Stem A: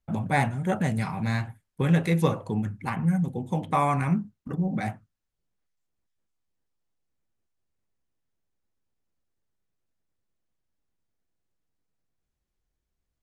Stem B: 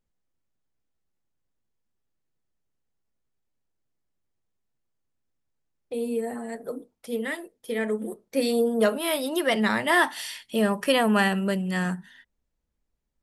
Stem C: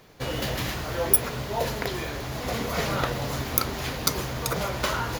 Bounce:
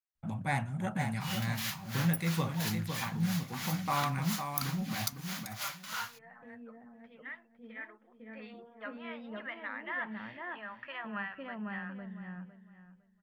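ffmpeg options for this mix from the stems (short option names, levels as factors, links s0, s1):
-filter_complex "[0:a]adelay=150,volume=0.447,asplit=2[s0][s1];[s1]volume=0.473[s2];[1:a]lowpass=f=2200:w=0.5412,lowpass=f=2200:w=1.3066,lowshelf=f=210:g=8,volume=0.398,asplit=2[s3][s4];[s4]volume=0.251[s5];[2:a]highshelf=f=5500:g=6,aeval=exprs='val(0)*pow(10,-22*(0.5-0.5*cos(2*PI*3*n/s))/20)':c=same,adelay=1000,volume=1.19[s6];[s3][s6]amix=inputs=2:normalize=0,highpass=1200,acompressor=threshold=0.00891:ratio=1.5,volume=1[s7];[s2][s5]amix=inputs=2:normalize=0,aecho=0:1:506|1012|1518|2024:1|0.23|0.0529|0.0122[s8];[s0][s7][s8]amix=inputs=3:normalize=0,equalizer=f=420:w=1.5:g=-9.5"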